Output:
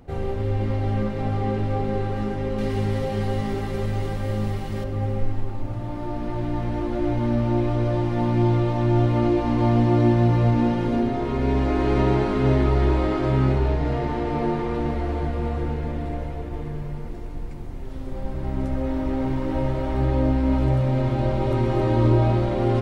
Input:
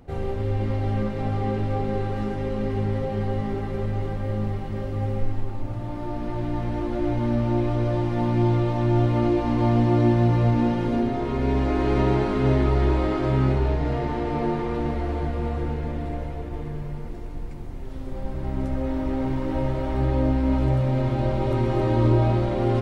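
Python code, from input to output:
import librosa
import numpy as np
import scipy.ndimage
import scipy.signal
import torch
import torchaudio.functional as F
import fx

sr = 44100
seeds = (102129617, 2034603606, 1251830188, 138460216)

y = fx.high_shelf(x, sr, hz=3100.0, db=12.0, at=(2.58, 4.84))
y = y * librosa.db_to_amplitude(1.0)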